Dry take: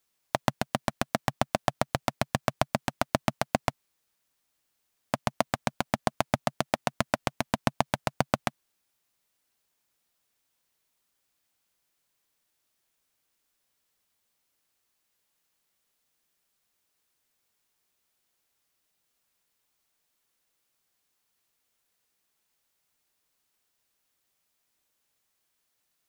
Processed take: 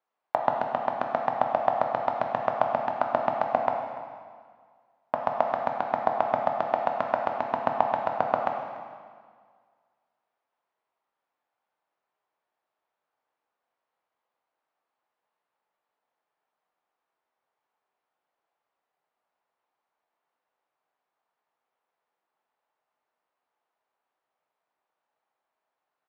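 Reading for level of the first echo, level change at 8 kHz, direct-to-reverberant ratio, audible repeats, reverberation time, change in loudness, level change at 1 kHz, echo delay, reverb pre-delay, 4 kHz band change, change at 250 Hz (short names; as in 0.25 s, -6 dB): -18.5 dB, under -25 dB, 2.0 dB, 1, 1.8 s, +3.0 dB, +6.5 dB, 0.291 s, 6 ms, -12.5 dB, -6.5 dB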